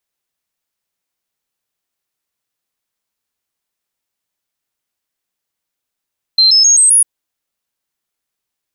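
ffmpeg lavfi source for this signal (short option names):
-f lavfi -i "aevalsrc='0.531*clip(min(mod(t,0.13),0.13-mod(t,0.13))/0.005,0,1)*sin(2*PI*4130*pow(2,floor(t/0.13)/3)*mod(t,0.13))':d=0.65:s=44100"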